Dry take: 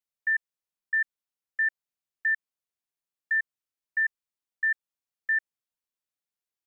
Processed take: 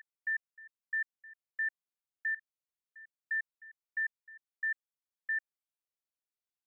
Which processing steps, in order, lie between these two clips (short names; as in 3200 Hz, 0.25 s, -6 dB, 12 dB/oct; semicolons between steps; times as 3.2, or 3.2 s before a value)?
reverse echo 1.012 s -19.5 dB; gain -8 dB